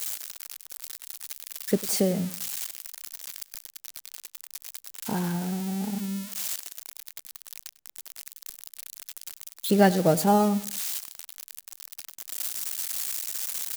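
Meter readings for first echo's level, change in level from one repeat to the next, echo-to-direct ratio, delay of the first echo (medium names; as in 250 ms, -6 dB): -18.5 dB, -8.0 dB, -18.0 dB, 99 ms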